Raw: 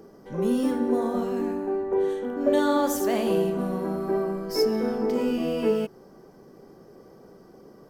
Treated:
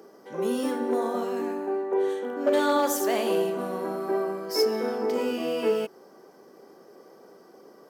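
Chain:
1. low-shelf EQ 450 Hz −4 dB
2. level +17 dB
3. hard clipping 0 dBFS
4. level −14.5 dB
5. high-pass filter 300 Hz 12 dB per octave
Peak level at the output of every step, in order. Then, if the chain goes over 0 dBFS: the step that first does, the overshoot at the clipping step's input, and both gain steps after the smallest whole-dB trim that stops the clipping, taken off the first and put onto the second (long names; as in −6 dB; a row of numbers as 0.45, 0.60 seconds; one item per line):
−12.0, +5.0, 0.0, −14.5, −12.0 dBFS
step 2, 5.0 dB
step 2 +12 dB, step 4 −9.5 dB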